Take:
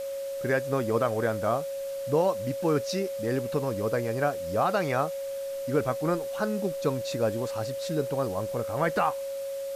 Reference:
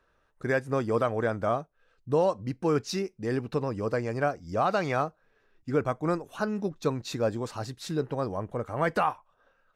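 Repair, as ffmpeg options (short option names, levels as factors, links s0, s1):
-af "bandreject=f=550:w=30,afwtdn=0.004,asetnsamples=n=441:p=0,asendcmd='9.11 volume volume 5.5dB',volume=1"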